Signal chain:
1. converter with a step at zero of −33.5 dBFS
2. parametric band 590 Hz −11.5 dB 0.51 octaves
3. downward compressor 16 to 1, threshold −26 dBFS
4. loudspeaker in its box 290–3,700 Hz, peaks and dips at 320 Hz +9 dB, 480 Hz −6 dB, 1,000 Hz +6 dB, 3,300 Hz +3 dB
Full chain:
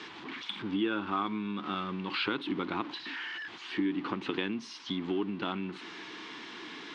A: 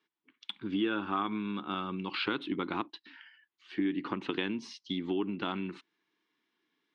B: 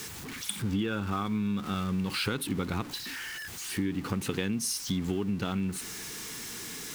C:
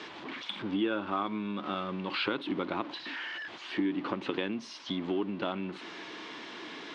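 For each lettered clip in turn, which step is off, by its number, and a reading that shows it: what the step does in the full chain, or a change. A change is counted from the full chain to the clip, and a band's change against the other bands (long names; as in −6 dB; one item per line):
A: 1, distortion level −16 dB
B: 4, 125 Hz band +10.0 dB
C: 2, 500 Hz band +2.5 dB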